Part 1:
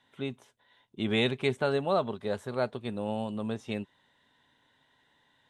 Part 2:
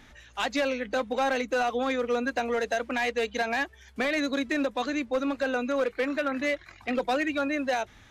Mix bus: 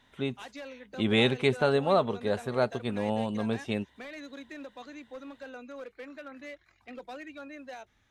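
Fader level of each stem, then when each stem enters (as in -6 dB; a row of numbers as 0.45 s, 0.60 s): +3.0 dB, -16.0 dB; 0.00 s, 0.00 s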